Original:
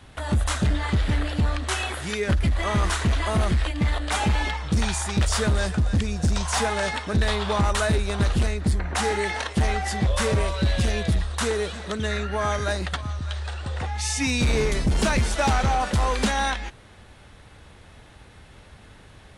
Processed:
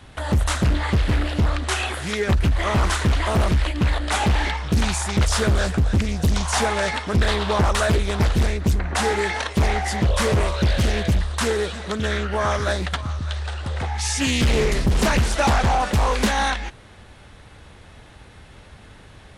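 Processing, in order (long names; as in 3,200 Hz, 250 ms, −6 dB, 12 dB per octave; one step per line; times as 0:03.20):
highs frequency-modulated by the lows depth 0.56 ms
level +3 dB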